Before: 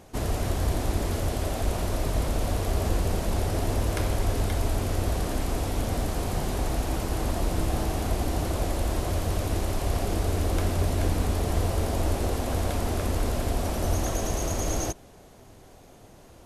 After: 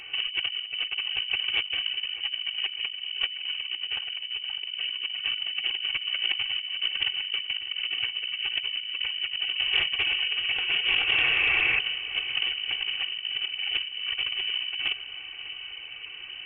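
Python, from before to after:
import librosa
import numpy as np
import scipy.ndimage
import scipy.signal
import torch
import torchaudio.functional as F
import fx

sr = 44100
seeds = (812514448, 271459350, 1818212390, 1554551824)

y = fx.rattle_buzz(x, sr, strikes_db=-21.0, level_db=-35.0)
y = fx.highpass(y, sr, hz=fx.line((9.51, 45.0), (11.79, 170.0)), slope=24, at=(9.51, 11.79), fade=0.02)
y = fx.spec_gate(y, sr, threshold_db=-30, keep='strong')
y = fx.peak_eq(y, sr, hz=130.0, db=8.0, octaves=0.24)
y = y + 0.65 * np.pad(y, (int(2.7 * sr / 1000.0), 0))[:len(y)]
y = fx.over_compress(y, sr, threshold_db=-29.0, ratio=-0.5)
y = fx.echo_feedback(y, sr, ms=604, feedback_pct=53, wet_db=-15.0)
y = fx.freq_invert(y, sr, carrier_hz=3000)
y = fx.doppler_dist(y, sr, depth_ms=0.12)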